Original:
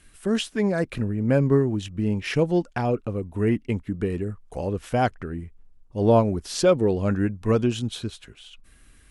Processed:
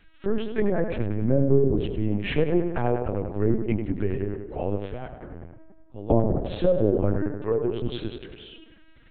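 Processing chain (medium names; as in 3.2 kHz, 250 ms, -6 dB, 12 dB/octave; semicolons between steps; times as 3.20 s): 4.77–6.11 s: compression 3:1, threshold -40 dBFS, peak gain reduction 18.5 dB; low-pass that closes with the level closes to 520 Hz, closed at -16 dBFS; 7.18–7.83 s: steep high-pass 280 Hz 72 dB/octave; tape echo 94 ms, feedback 73%, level -6 dB, low-pass 2.5 kHz; LPC vocoder at 8 kHz pitch kept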